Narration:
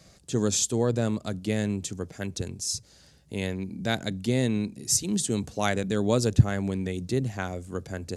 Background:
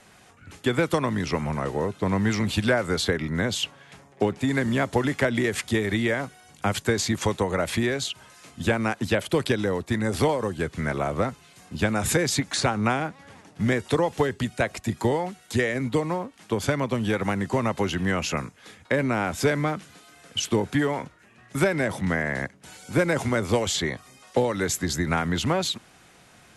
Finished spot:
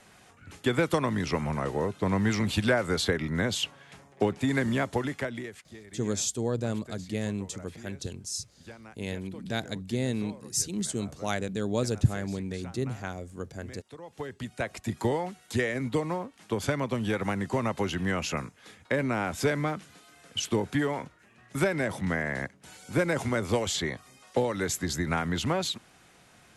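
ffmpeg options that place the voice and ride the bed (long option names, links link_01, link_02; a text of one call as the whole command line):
ffmpeg -i stem1.wav -i stem2.wav -filter_complex "[0:a]adelay=5650,volume=-4.5dB[link_01];[1:a]volume=17dB,afade=type=out:start_time=4.63:duration=0.99:silence=0.0891251,afade=type=in:start_time=14:duration=0.98:silence=0.105925[link_02];[link_01][link_02]amix=inputs=2:normalize=0" out.wav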